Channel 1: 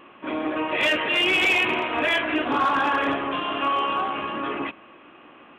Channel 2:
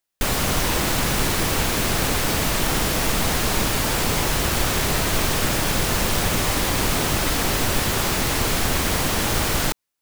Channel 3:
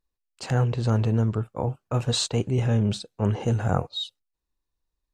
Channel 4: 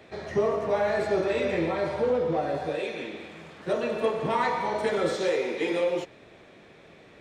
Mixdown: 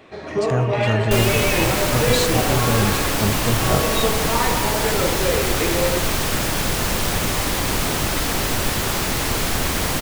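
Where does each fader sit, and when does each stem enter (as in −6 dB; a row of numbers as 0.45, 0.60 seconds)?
−6.0, 0.0, +1.5, +3.0 decibels; 0.00, 0.90, 0.00, 0.00 seconds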